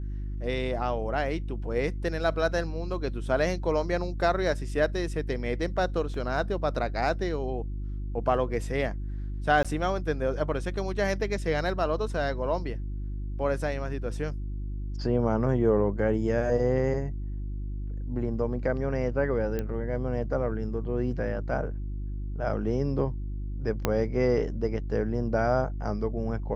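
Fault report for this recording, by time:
mains hum 50 Hz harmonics 7 −33 dBFS
0:06.14: drop-out 2.4 ms
0:09.63–0:09.65: drop-out 16 ms
0:19.59: click −18 dBFS
0:23.85: click −9 dBFS

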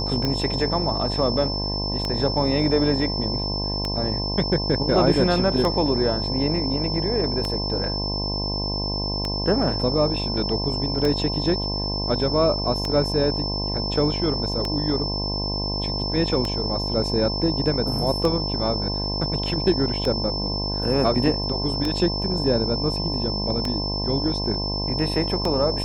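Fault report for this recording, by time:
mains buzz 50 Hz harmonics 21 −28 dBFS
scratch tick 33 1/3 rpm −11 dBFS
whistle 5,300 Hz −27 dBFS

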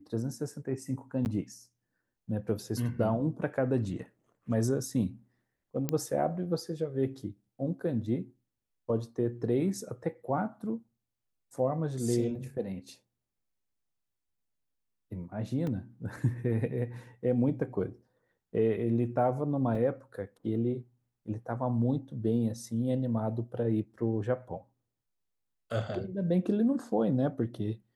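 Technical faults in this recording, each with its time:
0:01.25–0:01.26: drop-out 9.9 ms
0:05.89: click −15 dBFS
0:15.67: drop-out 2.2 ms
0:19.75: drop-out 3.3 ms

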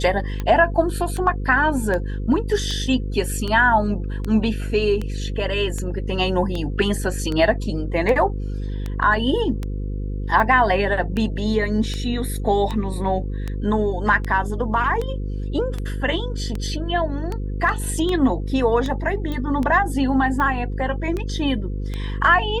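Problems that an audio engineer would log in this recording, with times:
mains buzz 50 Hz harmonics 10 −26 dBFS
scratch tick 78 rpm −14 dBFS
0:19.32: click −16 dBFS

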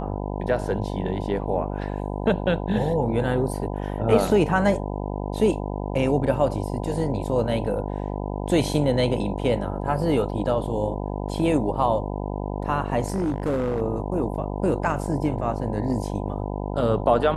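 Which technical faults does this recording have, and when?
mains buzz 50 Hz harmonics 20 −29 dBFS
0:13.06–0:13.82: clipping −20 dBFS

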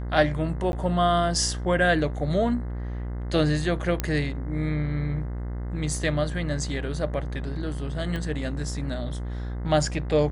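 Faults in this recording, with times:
mains buzz 60 Hz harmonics 35 −31 dBFS
0:00.72–0:00.73: drop-out 11 ms
0:04.00: click −10 dBFS
0:08.16: click −19 dBFS

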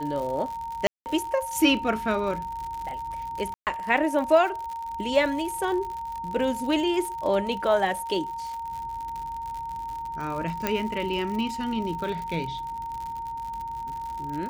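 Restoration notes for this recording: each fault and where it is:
surface crackle 97 per second −32 dBFS
whistle 920 Hz −31 dBFS
0:00.87–0:01.06: drop-out 189 ms
0:03.54–0:03.67: drop-out 128 ms
0:10.67: click −10 dBFS

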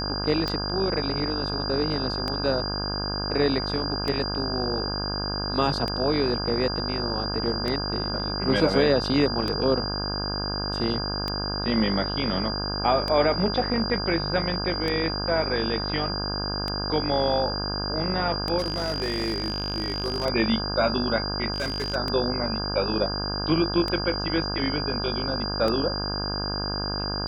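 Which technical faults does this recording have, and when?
mains buzz 50 Hz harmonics 33 −31 dBFS
scratch tick 33 1/3 rpm −14 dBFS
whistle 4,800 Hz −30 dBFS
0:18.58–0:20.26: clipping −22 dBFS
0:21.54–0:21.96: clipping −23.5 dBFS

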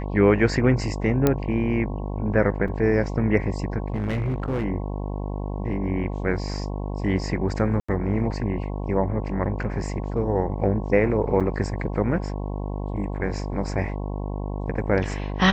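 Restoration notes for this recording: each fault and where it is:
mains buzz 50 Hz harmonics 22 −29 dBFS
0:01.27: click −6 dBFS
0:02.68: drop-out 4.4 ms
0:03.88–0:04.65: clipping −21.5 dBFS
0:07.80–0:07.88: drop-out 85 ms
0:11.40–0:11.41: drop-out 6.6 ms

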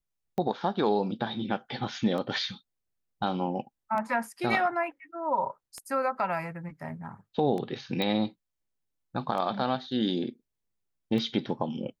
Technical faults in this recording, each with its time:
scratch tick 33 1/3 rpm −23 dBFS
0:08.02: click −17 dBFS

